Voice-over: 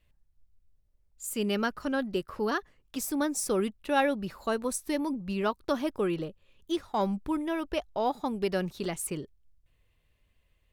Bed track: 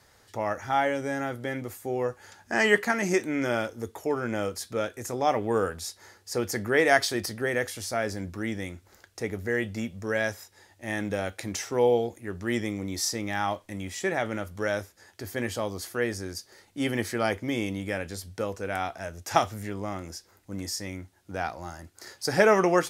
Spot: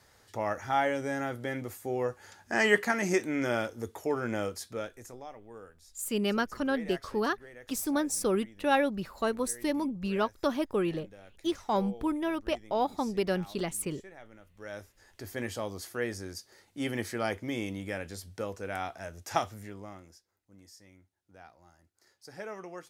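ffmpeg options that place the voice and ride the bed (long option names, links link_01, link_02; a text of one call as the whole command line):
ffmpeg -i stem1.wav -i stem2.wav -filter_complex "[0:a]adelay=4750,volume=0dB[link_01];[1:a]volume=15dB,afade=type=out:start_time=4.35:duration=0.94:silence=0.1,afade=type=in:start_time=14.53:duration=0.65:silence=0.133352,afade=type=out:start_time=19.2:duration=1.07:silence=0.149624[link_02];[link_01][link_02]amix=inputs=2:normalize=0" out.wav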